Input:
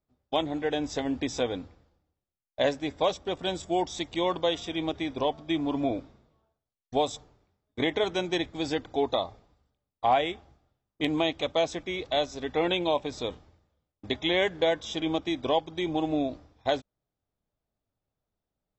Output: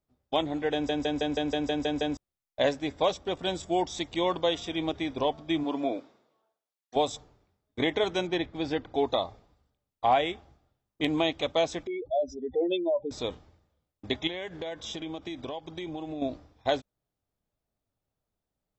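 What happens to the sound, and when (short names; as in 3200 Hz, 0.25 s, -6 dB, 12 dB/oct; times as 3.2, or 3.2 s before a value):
0.73 stutter in place 0.16 s, 9 plays
5.63–6.95 HPF 250 Hz -> 510 Hz
8.27–8.95 air absorption 150 m
11.87–13.11 spectral contrast raised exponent 3.2
14.27–16.22 compressor, threshold -33 dBFS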